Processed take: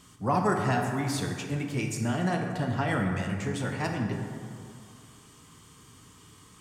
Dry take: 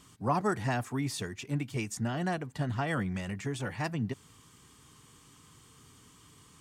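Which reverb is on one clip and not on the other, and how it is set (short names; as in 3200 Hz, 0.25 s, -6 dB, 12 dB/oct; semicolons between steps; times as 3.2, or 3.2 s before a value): plate-style reverb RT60 2.3 s, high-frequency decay 0.45×, DRR 2 dB; gain +2 dB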